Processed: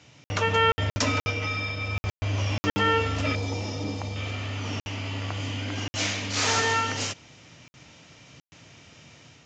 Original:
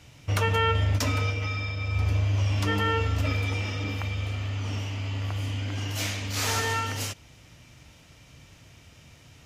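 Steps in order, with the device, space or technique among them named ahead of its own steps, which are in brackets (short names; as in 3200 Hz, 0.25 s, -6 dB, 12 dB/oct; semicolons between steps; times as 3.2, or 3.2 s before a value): call with lost packets (HPF 140 Hz 12 dB/oct; downsampling 16000 Hz; AGC gain up to 4 dB; packet loss packets of 60 ms random); 3.35–4.16 band shelf 2000 Hz -10.5 dB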